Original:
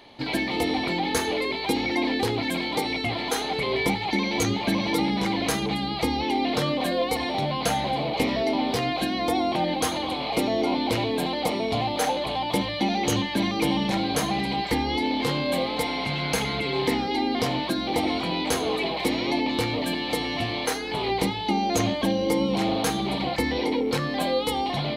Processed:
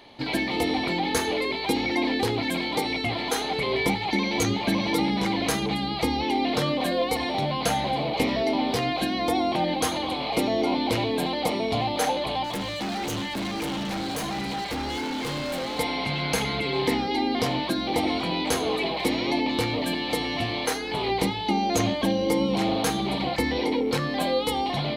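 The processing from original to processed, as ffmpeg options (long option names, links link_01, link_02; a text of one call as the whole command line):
ffmpeg -i in.wav -filter_complex "[0:a]asettb=1/sr,asplit=3[link_01][link_02][link_03];[link_01]atrim=end=12.444[link_04];[link_02]atrim=start=12.44:end=15.79,asetpts=PTS-STARTPTS,afade=type=in:duration=0.004:curve=qsin,afade=type=out:start_time=3.346:duration=0.004:curve=qsin,asoftclip=type=hard:threshold=-27.5dB[link_05];[link_03]atrim=start=15.786[link_06];[link_04][link_05]acrossfade=duration=0.004:curve1=hsin:curve2=qsin[link_07];[link_07][link_06]acrossfade=duration=0.004:curve1=qsin:curve2=hsin" out.wav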